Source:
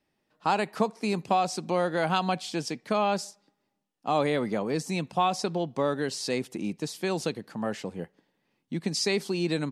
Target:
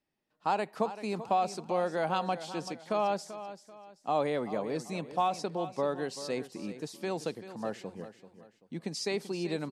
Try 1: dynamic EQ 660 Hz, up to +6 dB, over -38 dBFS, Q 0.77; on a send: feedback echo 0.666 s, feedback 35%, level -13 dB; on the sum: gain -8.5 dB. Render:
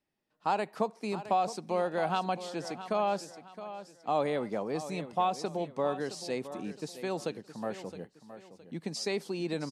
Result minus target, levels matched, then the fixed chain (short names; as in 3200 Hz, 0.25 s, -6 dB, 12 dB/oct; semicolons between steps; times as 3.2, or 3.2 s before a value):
echo 0.279 s late
dynamic EQ 660 Hz, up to +6 dB, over -38 dBFS, Q 0.77; on a send: feedback echo 0.387 s, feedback 35%, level -13 dB; on the sum: gain -8.5 dB